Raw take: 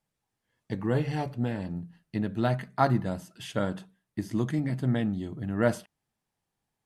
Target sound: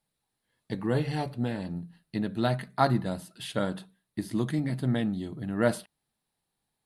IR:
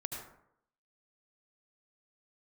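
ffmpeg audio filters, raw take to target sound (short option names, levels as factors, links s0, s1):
-af "equalizer=f=100:t=o:w=0.33:g=-6,equalizer=f=4000:t=o:w=0.33:g=9,equalizer=f=6300:t=o:w=0.33:g=-5,equalizer=f=10000:t=o:w=0.33:g=9"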